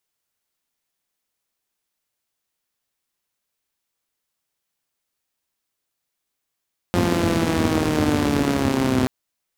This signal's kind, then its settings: four-cylinder engine model, changing speed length 2.13 s, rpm 5300, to 3800, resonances 100/230 Hz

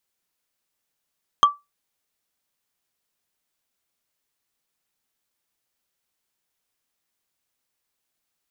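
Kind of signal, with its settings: wood hit, lowest mode 1160 Hz, decay 0.20 s, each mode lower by 8.5 dB, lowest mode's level -6.5 dB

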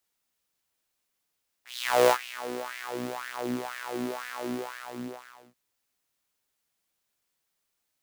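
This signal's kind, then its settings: synth patch with filter wobble B2, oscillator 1 saw, interval 0 st, noise -18 dB, filter highpass, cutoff 540 Hz, Q 3.8, filter envelope 1.5 oct, filter decay 1.38 s, filter sustain 20%, attack 0.456 s, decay 0.07 s, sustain -16 dB, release 1.11 s, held 2.78 s, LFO 2 Hz, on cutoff 1.4 oct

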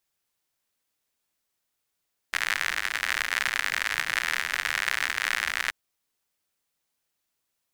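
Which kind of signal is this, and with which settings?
rain from filtered ticks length 3.38 s, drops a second 87, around 1800 Hz, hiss -23 dB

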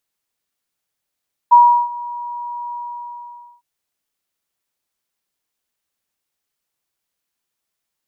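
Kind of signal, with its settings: ADSR sine 960 Hz, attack 18 ms, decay 0.354 s, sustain -21 dB, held 1.22 s, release 0.886 s -3.5 dBFS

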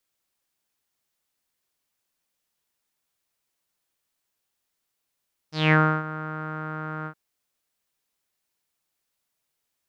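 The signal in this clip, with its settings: synth note saw D#3 12 dB/oct, low-pass 1400 Hz, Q 6.7, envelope 2 oct, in 0.26 s, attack 0.198 s, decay 0.31 s, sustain -16.5 dB, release 0.08 s, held 1.54 s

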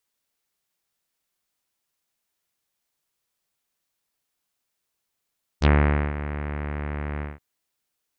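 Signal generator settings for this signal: synth note saw D2 24 dB/oct, low-pass 2100 Hz, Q 2, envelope 2 oct, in 0.07 s, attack 40 ms, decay 0.48 s, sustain -14 dB, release 0.18 s, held 1.60 s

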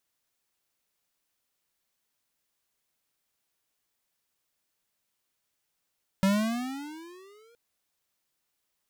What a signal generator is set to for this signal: gliding synth tone square, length 1.32 s, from 190 Hz, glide +16 st, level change -38 dB, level -21.5 dB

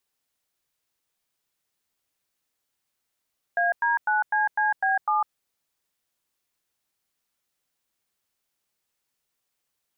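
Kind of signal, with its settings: DTMF "AD9CCB7", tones 0.152 s, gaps 99 ms, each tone -22.5 dBFS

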